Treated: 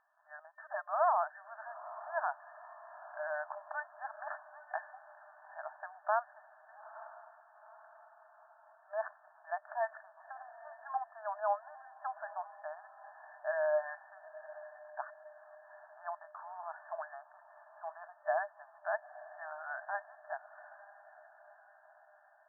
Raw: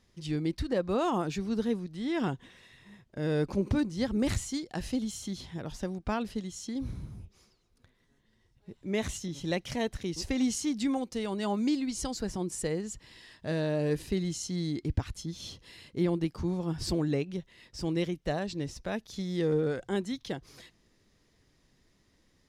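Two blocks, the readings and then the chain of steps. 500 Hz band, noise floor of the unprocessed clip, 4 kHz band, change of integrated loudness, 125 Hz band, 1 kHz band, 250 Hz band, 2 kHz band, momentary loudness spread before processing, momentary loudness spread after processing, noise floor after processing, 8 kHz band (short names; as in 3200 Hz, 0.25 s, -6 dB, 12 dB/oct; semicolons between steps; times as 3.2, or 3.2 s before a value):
-6.0 dB, -69 dBFS, under -40 dB, -7.0 dB, under -40 dB, +3.5 dB, under -40 dB, 0.0 dB, 11 LU, 22 LU, -64 dBFS, under -40 dB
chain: diffused feedback echo 0.903 s, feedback 54%, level -16 dB; FFT band-pass 600–1800 Hz; gain +3.5 dB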